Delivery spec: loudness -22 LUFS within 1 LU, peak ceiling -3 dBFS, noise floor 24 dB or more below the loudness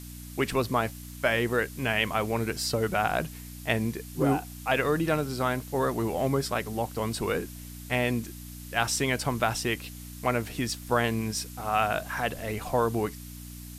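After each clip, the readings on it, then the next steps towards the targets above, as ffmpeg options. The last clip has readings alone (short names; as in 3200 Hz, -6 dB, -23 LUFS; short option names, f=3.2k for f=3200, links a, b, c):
hum 60 Hz; harmonics up to 300 Hz; hum level -41 dBFS; noise floor -42 dBFS; noise floor target -53 dBFS; loudness -28.5 LUFS; peak -9.5 dBFS; loudness target -22.0 LUFS
-> -af "bandreject=f=60:t=h:w=4,bandreject=f=120:t=h:w=4,bandreject=f=180:t=h:w=4,bandreject=f=240:t=h:w=4,bandreject=f=300:t=h:w=4"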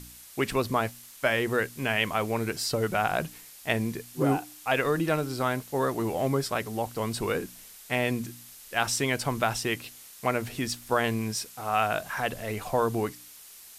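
hum none; noise floor -49 dBFS; noise floor target -53 dBFS
-> -af "afftdn=nr=6:nf=-49"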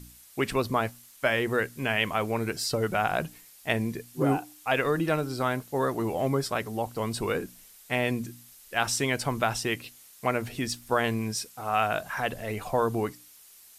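noise floor -53 dBFS; loudness -29.0 LUFS; peak -9.0 dBFS; loudness target -22.0 LUFS
-> -af "volume=7dB,alimiter=limit=-3dB:level=0:latency=1"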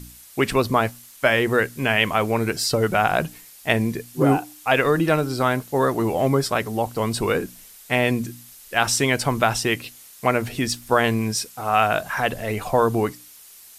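loudness -22.0 LUFS; peak -3.0 dBFS; noise floor -46 dBFS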